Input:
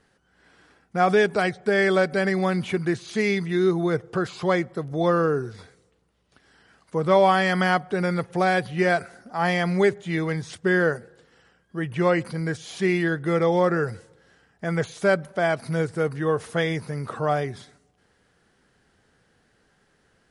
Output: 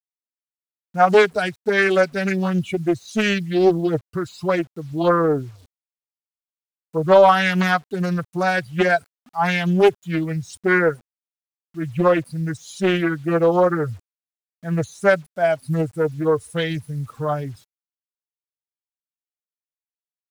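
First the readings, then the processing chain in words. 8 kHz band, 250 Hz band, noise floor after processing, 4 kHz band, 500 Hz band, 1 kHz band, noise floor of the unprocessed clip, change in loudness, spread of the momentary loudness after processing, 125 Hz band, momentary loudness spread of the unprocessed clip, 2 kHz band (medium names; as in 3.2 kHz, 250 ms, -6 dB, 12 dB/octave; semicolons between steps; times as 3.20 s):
+2.5 dB, +3.0 dB, under -85 dBFS, +3.5 dB, +3.5 dB, +3.5 dB, -65 dBFS, +3.5 dB, 12 LU, +2.5 dB, 10 LU, +3.0 dB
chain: expander on every frequency bin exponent 2; bit crusher 10-bit; loudspeaker Doppler distortion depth 0.41 ms; trim +8 dB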